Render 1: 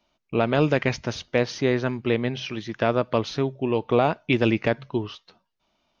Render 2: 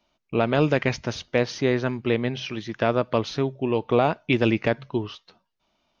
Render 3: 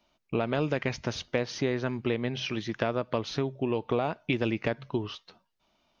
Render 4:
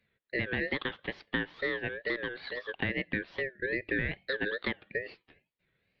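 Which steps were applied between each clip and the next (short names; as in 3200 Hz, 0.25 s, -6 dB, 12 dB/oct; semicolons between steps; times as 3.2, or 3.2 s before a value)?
nothing audible
compressor 3:1, threshold -26 dBFS, peak gain reduction 9 dB
mistuned SSB +310 Hz 250–2500 Hz; ring modulator 1100 Hz; wow and flutter 140 cents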